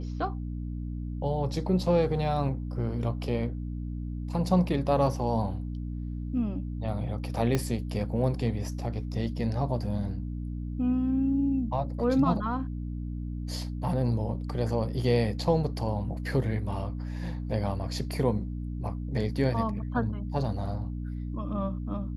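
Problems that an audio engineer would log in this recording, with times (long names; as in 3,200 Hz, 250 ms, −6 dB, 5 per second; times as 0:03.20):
mains hum 60 Hz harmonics 5 −34 dBFS
0:07.55: click −13 dBFS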